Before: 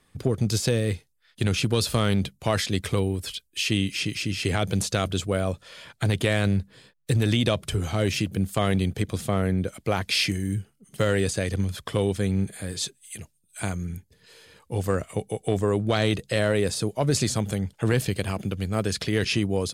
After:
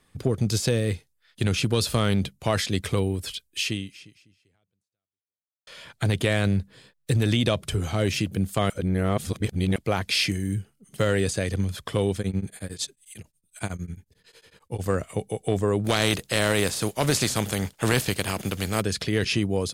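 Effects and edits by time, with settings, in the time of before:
3.63–5.67 s: fade out exponential
8.70–9.76 s: reverse
12.19–14.86 s: tremolo of two beating tones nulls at 11 Hz
15.84–18.80 s: spectral contrast reduction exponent 0.63

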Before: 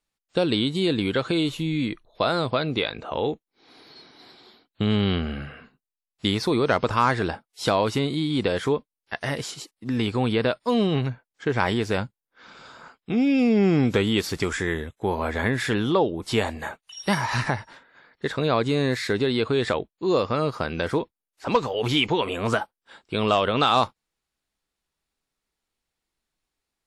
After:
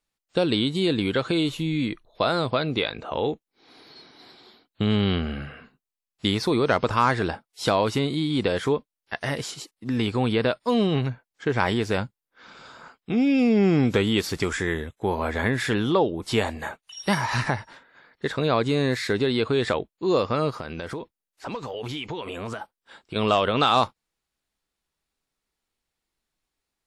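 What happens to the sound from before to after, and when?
20.54–23.16 s: compression, threshold -29 dBFS

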